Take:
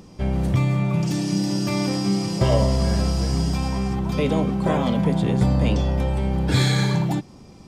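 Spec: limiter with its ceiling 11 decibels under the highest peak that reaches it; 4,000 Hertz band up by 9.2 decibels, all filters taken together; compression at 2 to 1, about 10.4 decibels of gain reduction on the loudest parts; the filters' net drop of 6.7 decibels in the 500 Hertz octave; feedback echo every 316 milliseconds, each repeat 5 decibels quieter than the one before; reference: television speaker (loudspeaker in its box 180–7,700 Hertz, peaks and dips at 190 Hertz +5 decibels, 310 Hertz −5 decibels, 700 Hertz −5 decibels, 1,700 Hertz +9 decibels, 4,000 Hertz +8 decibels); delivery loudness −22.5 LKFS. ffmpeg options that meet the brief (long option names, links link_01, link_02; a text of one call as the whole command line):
ffmpeg -i in.wav -af "equalizer=frequency=500:width_type=o:gain=-6.5,equalizer=frequency=4000:width_type=o:gain=5.5,acompressor=threshold=-35dB:ratio=2,alimiter=level_in=4.5dB:limit=-24dB:level=0:latency=1,volume=-4.5dB,highpass=frequency=180:width=0.5412,highpass=frequency=180:width=1.3066,equalizer=frequency=190:width_type=q:width=4:gain=5,equalizer=frequency=310:width_type=q:width=4:gain=-5,equalizer=frequency=700:width_type=q:width=4:gain=-5,equalizer=frequency=1700:width_type=q:width=4:gain=9,equalizer=frequency=4000:width_type=q:width=4:gain=8,lowpass=frequency=7700:width=0.5412,lowpass=frequency=7700:width=1.3066,aecho=1:1:316|632|948|1264|1580|1896|2212:0.562|0.315|0.176|0.0988|0.0553|0.031|0.0173,volume=11dB" out.wav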